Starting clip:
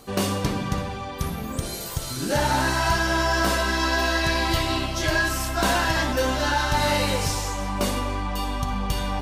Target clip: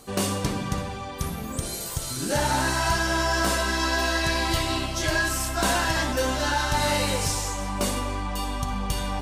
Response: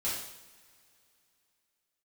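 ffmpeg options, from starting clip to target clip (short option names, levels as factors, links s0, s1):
-af "equalizer=f=8500:t=o:w=0.87:g=6,volume=0.794"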